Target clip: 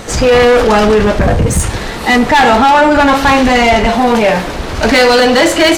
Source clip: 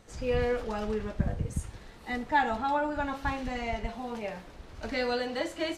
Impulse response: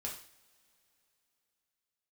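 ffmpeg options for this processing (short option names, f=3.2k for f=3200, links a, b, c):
-af "apsyclip=29.5dB,lowshelf=f=140:g=-6.5,acontrast=53,volume=-4dB"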